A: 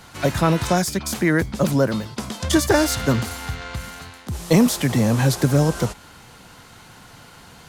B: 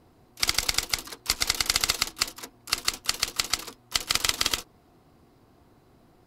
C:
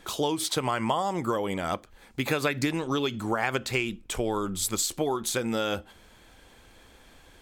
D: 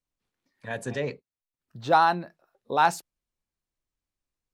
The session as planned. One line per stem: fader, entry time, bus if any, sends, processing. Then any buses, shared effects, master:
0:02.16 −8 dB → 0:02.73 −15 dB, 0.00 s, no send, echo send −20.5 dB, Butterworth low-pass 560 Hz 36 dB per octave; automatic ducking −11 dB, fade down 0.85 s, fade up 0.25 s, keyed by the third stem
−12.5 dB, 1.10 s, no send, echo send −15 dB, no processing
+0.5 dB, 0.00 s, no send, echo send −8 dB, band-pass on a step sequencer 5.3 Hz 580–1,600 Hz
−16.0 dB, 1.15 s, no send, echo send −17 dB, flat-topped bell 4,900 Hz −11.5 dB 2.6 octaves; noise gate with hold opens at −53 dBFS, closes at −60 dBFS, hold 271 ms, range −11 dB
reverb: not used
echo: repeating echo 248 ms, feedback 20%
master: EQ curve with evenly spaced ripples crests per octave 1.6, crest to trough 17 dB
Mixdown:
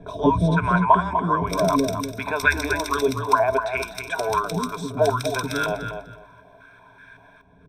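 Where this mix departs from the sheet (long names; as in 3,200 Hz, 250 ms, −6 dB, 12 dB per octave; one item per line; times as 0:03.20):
stem A −8.0 dB → +3.0 dB
stem C +0.5 dB → +11.5 dB
stem D: entry 1.15 s → 2.20 s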